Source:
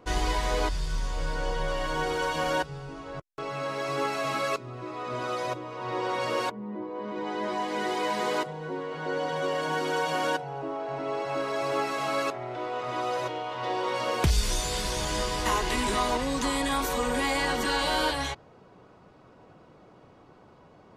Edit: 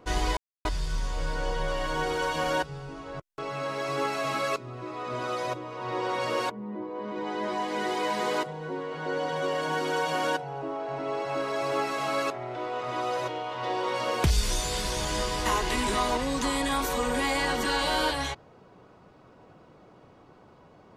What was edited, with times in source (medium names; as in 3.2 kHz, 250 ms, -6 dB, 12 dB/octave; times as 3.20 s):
0.37–0.65 s: mute